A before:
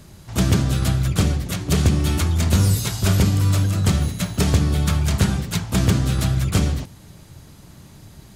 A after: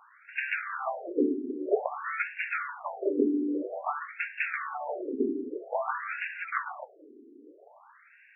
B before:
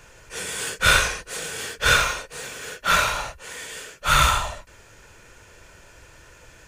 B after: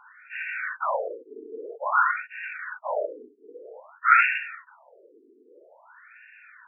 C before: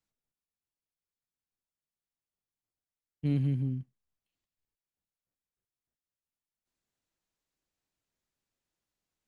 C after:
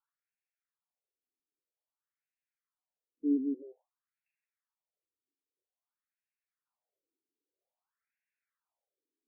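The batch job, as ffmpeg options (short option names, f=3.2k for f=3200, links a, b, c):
-af "afftfilt=real='re*between(b*sr/4096,150,2800)':imag='im*between(b*sr/4096,150,2800)':win_size=4096:overlap=0.75,afftfilt=real='re*between(b*sr/1024,310*pow(2100/310,0.5+0.5*sin(2*PI*0.51*pts/sr))/1.41,310*pow(2100/310,0.5+0.5*sin(2*PI*0.51*pts/sr))*1.41)':imag='im*between(b*sr/1024,310*pow(2100/310,0.5+0.5*sin(2*PI*0.51*pts/sr))/1.41,310*pow(2100/310,0.5+0.5*sin(2*PI*0.51*pts/sr))*1.41)':win_size=1024:overlap=0.75,volume=4.5dB"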